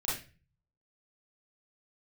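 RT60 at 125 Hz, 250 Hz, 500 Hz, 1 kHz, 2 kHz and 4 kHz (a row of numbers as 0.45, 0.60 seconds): 0.85, 0.55, 0.35, 0.30, 0.35, 0.30 seconds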